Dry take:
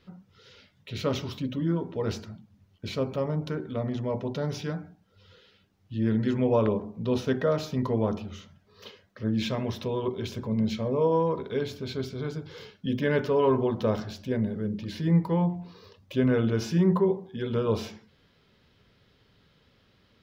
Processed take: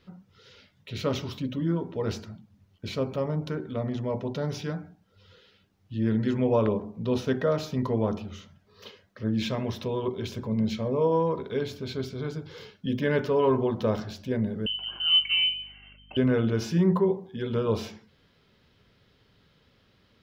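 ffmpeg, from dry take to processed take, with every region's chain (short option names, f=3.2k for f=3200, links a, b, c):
-filter_complex "[0:a]asettb=1/sr,asplit=3[a][b][c];[a]atrim=end=14.664[d];[b]atrim=start=14.66:end=16.17,asetpts=PTS-STARTPTS,afade=t=in:d=0.004:c=qsin,afade=t=out:st=1.506:d=0.004:c=qsin,lowpass=f=2.7k:t=q:w=0.5098,lowpass=f=2.7k:t=q:w=0.6013,lowpass=f=2.7k:t=q:w=0.9,lowpass=f=2.7k:t=q:w=2.563,afreqshift=-3200,aeval=exprs='val(0)+0.00178*(sin(2*PI*50*n/s)+sin(2*PI*2*50*n/s)/2+sin(2*PI*3*50*n/s)/3+sin(2*PI*4*50*n/s)/4+sin(2*PI*5*50*n/s)/5)':c=same[e];[c]atrim=start=16.166[f];[d][e]acrossfade=d=0.004:c1=hsin:c2=qsin[g];[g][f]acrossfade=d=0.004:c1=qsin:c2=hsin"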